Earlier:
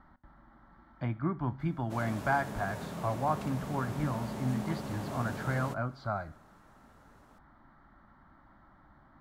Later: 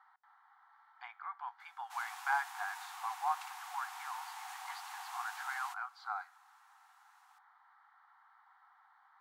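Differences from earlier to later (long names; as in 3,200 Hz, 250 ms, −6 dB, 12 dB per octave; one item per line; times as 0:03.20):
speech: send −10.0 dB
master: add linear-phase brick-wall high-pass 720 Hz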